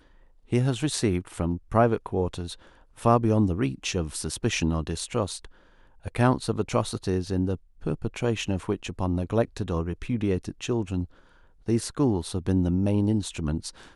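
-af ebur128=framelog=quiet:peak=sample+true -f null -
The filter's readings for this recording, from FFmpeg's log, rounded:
Integrated loudness:
  I:         -27.0 LUFS
  Threshold: -37.5 LUFS
Loudness range:
  LRA:         3.2 LU
  Threshold: -47.6 LUFS
  LRA low:   -29.0 LUFS
  LRA high:  -25.8 LUFS
Sample peak:
  Peak:       -6.0 dBFS
True peak:
  Peak:       -6.0 dBFS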